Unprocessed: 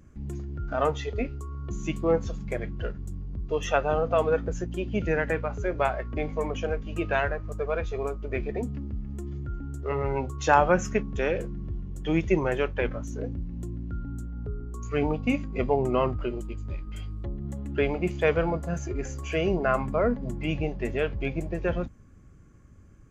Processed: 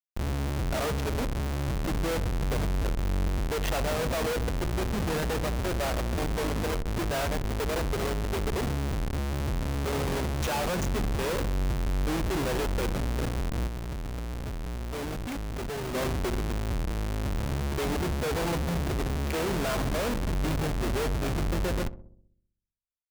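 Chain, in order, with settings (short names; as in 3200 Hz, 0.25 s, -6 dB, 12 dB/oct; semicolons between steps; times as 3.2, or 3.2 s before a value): Schmitt trigger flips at -34 dBFS; darkening echo 64 ms, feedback 61%, low-pass 830 Hz, level -13 dB; 13.67–15.95 overloaded stage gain 33 dB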